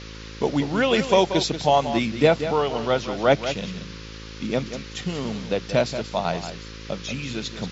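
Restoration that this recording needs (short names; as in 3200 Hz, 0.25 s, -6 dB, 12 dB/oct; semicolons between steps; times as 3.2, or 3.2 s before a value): de-hum 54.3 Hz, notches 10; noise print and reduce 29 dB; inverse comb 0.183 s -10.5 dB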